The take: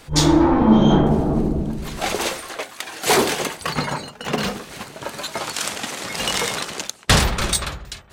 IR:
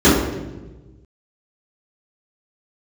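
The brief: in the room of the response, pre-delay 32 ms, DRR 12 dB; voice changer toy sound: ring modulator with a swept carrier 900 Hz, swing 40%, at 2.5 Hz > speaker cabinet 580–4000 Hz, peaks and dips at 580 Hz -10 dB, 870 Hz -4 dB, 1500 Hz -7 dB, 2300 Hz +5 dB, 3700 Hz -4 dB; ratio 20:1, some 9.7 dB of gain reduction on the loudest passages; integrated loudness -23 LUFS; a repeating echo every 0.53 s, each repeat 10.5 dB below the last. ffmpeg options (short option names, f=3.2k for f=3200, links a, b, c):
-filter_complex "[0:a]acompressor=threshold=-19dB:ratio=20,aecho=1:1:530|1060|1590:0.299|0.0896|0.0269,asplit=2[a][b];[1:a]atrim=start_sample=2205,adelay=32[c];[b][c]afir=irnorm=-1:irlink=0,volume=-39.5dB[d];[a][d]amix=inputs=2:normalize=0,aeval=exprs='val(0)*sin(2*PI*900*n/s+900*0.4/2.5*sin(2*PI*2.5*n/s))':c=same,highpass=580,equalizer=f=580:t=q:w=4:g=-10,equalizer=f=870:t=q:w=4:g=-4,equalizer=f=1.5k:t=q:w=4:g=-7,equalizer=f=2.3k:t=q:w=4:g=5,equalizer=f=3.7k:t=q:w=4:g=-4,lowpass=f=4k:w=0.5412,lowpass=f=4k:w=1.3066,volume=8dB"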